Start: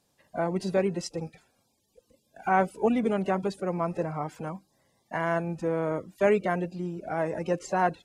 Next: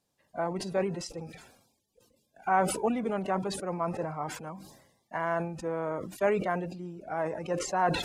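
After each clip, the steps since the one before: dynamic EQ 1000 Hz, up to +7 dB, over -39 dBFS, Q 0.78; sustainer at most 67 dB/s; gain -7.5 dB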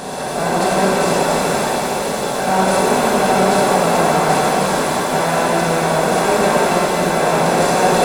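per-bin compression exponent 0.2; shimmer reverb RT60 3.6 s, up +7 st, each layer -8 dB, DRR -6.5 dB; gain -1.5 dB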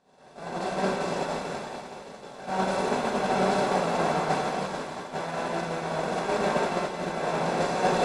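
LPF 6000 Hz 12 dB/oct; expander -9 dBFS; gain -7 dB

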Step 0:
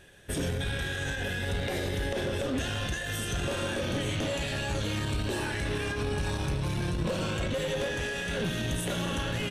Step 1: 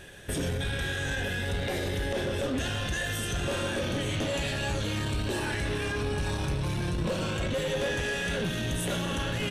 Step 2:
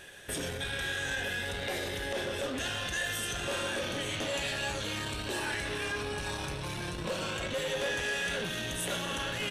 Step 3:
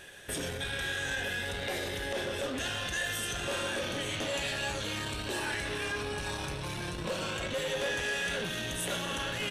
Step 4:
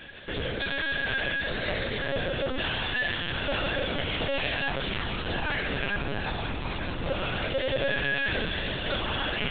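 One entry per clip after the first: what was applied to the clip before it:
limiter -31 dBFS, peak gain reduction 8 dB; gain +7.5 dB
low shelf 350 Hz -11.5 dB
nothing audible
LPC vocoder at 8 kHz pitch kept; gain +5.5 dB

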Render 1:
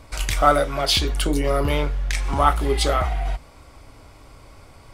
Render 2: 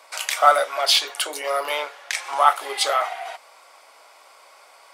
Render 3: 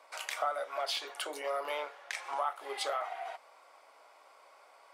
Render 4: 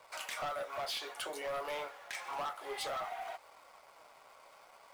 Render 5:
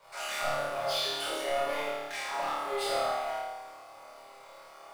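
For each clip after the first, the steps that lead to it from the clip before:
HPF 600 Hz 24 dB/oct; gain +2.5 dB
high shelf 2300 Hz -10 dB; compressor 4:1, threshold -25 dBFS, peak gain reduction 12.5 dB; gain -6.5 dB
in parallel at -8 dB: companded quantiser 4-bit; on the sum: flange 0.58 Hz, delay 2 ms, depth 6.5 ms, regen -54%; soft clip -35.5 dBFS, distortion -10 dB; gain +1.5 dB
on a send: flutter echo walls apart 4.7 m, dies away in 1.1 s; on the sum: shoebox room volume 78 m³, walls mixed, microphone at 1.3 m; gain -3.5 dB

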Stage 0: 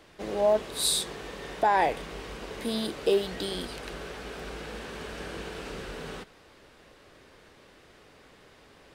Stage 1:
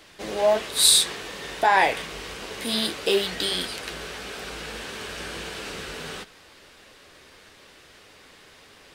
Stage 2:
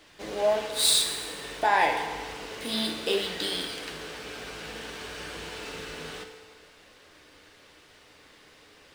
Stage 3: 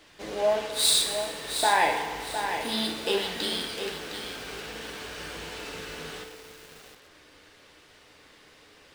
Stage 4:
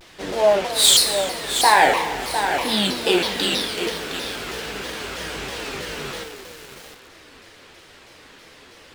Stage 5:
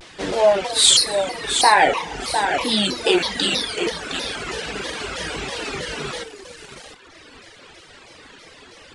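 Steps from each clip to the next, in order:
tilt shelf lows -5 dB, about 1500 Hz; flange 1.6 Hz, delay 9.1 ms, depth 4.6 ms, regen -43%; dynamic EQ 2000 Hz, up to +4 dB, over -43 dBFS, Q 0.73; gain +9 dB
median filter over 3 samples; FDN reverb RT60 1.6 s, low-frequency decay 0.8×, high-frequency decay 0.85×, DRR 4.5 dB; gain -5 dB
lo-fi delay 0.711 s, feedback 35%, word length 7-bit, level -7.5 dB
shaped vibrato saw down 3.1 Hz, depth 250 cents; gain +8 dB
reverb removal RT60 1.2 s; in parallel at -2.5 dB: compressor, threshold -26 dBFS, peak gain reduction 14.5 dB; on the sum: downsampling 22050 Hz

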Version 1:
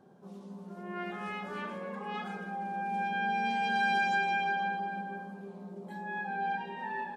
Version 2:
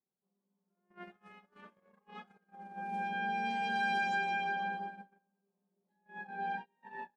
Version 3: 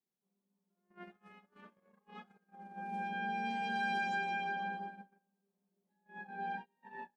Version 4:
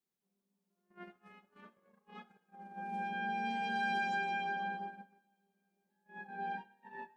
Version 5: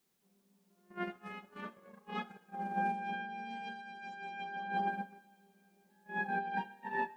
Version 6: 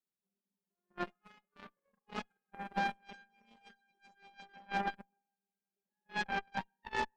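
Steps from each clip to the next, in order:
gate -35 dBFS, range -34 dB; gain -4 dB
bell 240 Hz +3.5 dB 1.1 oct; gain -3 dB
reverb, pre-delay 3 ms, DRR 16.5 dB
negative-ratio compressor -43 dBFS, ratio -0.5; gain +6.5 dB
spring tank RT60 1.1 s, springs 41/47 ms, chirp 50 ms, DRR 15 dB; reverb removal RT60 1.6 s; added harmonics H 2 -7 dB, 7 -18 dB, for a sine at -23.5 dBFS

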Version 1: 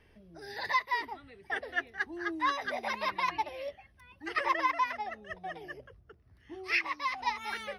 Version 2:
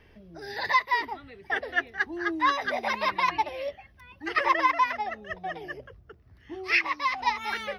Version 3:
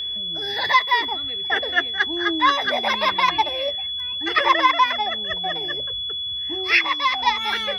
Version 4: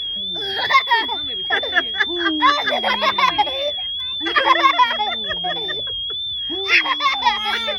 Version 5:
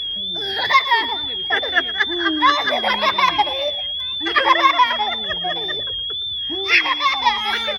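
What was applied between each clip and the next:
bell 9100 Hz -10 dB 0.52 oct; gain +6 dB
whine 3400 Hz -31 dBFS; gain +6 dB
wow and flutter 81 cents; gain +2.5 dB
feedback echo 0.114 s, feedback 34%, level -16.5 dB

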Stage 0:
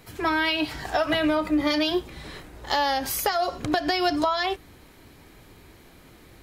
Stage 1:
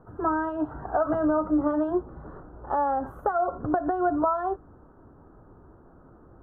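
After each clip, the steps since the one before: elliptic low-pass 1400 Hz, stop band 40 dB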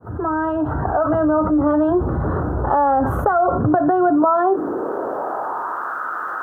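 opening faded in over 2.08 s; high-pass sweep 81 Hz -> 1400 Hz, 3.39–5.95; fast leveller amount 70%; gain +5.5 dB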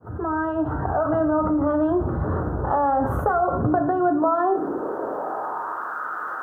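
thinning echo 0.113 s, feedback 68%, level -20 dB; on a send at -8.5 dB: reverb RT60 0.55 s, pre-delay 6 ms; on the sum: gain -4.5 dB

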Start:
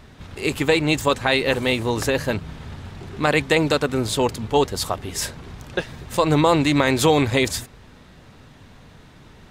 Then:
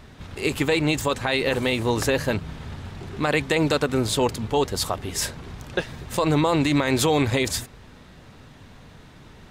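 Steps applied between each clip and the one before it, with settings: limiter -11 dBFS, peak gain reduction 6 dB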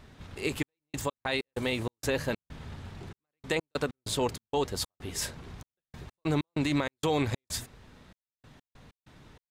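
step gate "xxxx..x.x.xx.xx." 96 bpm -60 dB; gain -7 dB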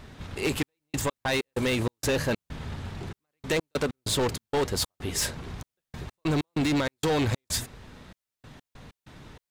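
hard clip -28 dBFS, distortion -9 dB; gain +6.5 dB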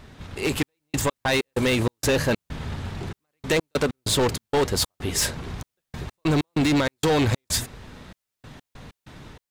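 AGC gain up to 4.5 dB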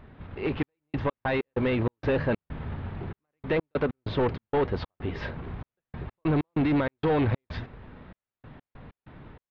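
Gaussian blur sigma 3.3 samples; gain -3 dB

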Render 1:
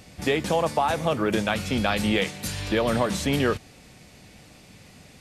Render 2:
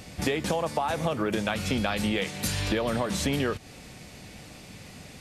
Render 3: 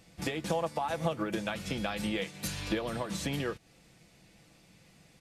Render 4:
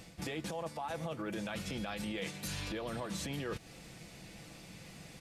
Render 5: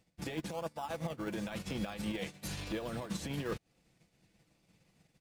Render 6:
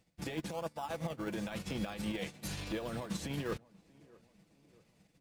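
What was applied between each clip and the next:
compressor, threshold -28 dBFS, peak gain reduction 10 dB; gain +4 dB
comb 6 ms, depth 40%; upward expander 1.5:1, over -43 dBFS; gain -4.5 dB
limiter -27.5 dBFS, peak gain reduction 11 dB; reverse; compressor 5:1, threshold -46 dBFS, peak gain reduction 12.5 dB; reverse; gain +8.5 dB
in parallel at -8.5 dB: decimation with a swept rate 28×, swing 60% 1 Hz; on the sum: upward expander 2.5:1, over -53 dBFS; gain +2 dB
tape echo 0.637 s, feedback 60%, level -22 dB, low-pass 1200 Hz

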